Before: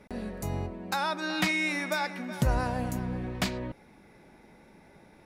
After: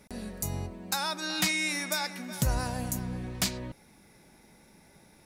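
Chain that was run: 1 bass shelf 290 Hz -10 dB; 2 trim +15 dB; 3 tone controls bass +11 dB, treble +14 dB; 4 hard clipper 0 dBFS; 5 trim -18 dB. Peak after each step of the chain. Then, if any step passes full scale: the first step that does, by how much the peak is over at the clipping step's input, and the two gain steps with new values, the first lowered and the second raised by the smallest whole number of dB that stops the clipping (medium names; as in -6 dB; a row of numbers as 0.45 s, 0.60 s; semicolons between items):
-15.5 dBFS, -0.5 dBFS, +6.5 dBFS, 0.0 dBFS, -18.0 dBFS; step 3, 6.5 dB; step 2 +8 dB, step 5 -11 dB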